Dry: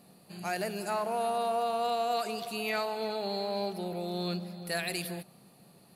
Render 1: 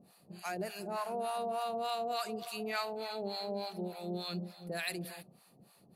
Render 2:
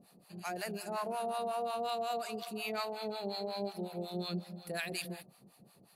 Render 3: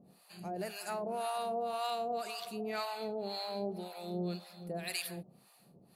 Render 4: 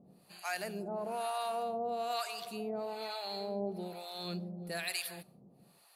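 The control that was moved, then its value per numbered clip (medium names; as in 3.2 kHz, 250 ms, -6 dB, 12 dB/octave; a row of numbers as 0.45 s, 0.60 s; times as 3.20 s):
harmonic tremolo, rate: 3.4 Hz, 5.5 Hz, 1.9 Hz, 1.1 Hz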